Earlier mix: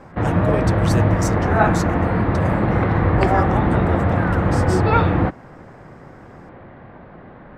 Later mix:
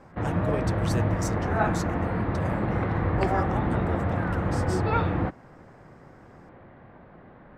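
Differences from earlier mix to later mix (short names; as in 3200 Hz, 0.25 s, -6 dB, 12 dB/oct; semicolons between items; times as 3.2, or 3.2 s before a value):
speech -6.5 dB; background -8.5 dB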